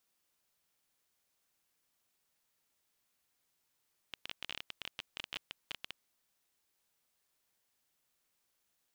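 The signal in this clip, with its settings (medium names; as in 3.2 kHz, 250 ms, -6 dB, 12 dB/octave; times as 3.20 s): random clicks 17 per s -23 dBFS 1.94 s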